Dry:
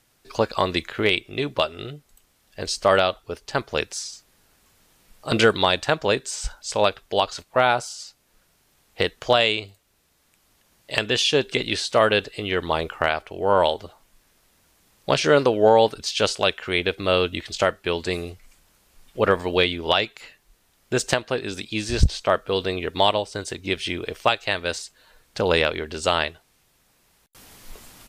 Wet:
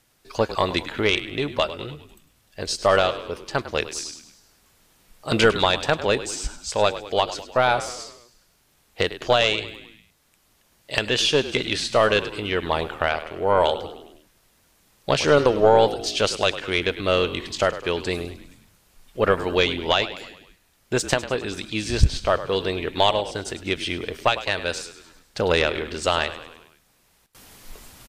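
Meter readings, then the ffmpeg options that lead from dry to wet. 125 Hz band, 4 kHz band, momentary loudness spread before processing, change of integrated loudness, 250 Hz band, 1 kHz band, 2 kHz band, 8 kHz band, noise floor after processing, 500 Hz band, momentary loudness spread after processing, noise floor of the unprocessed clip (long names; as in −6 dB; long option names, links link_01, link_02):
+1.0 dB, 0.0 dB, 12 LU, 0.0 dB, 0.0 dB, 0.0 dB, 0.0 dB, +0.5 dB, −63 dBFS, 0.0 dB, 13 LU, −64 dBFS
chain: -filter_complex "[0:a]asplit=6[link_01][link_02][link_03][link_04][link_05][link_06];[link_02]adelay=102,afreqshift=-49,volume=-14dB[link_07];[link_03]adelay=204,afreqshift=-98,volume=-19.4dB[link_08];[link_04]adelay=306,afreqshift=-147,volume=-24.7dB[link_09];[link_05]adelay=408,afreqshift=-196,volume=-30.1dB[link_10];[link_06]adelay=510,afreqshift=-245,volume=-35.4dB[link_11];[link_01][link_07][link_08][link_09][link_10][link_11]amix=inputs=6:normalize=0,aeval=exprs='0.708*(cos(1*acos(clip(val(0)/0.708,-1,1)))-cos(1*PI/2))+0.126*(cos(2*acos(clip(val(0)/0.708,-1,1)))-cos(2*PI/2))':channel_layout=same"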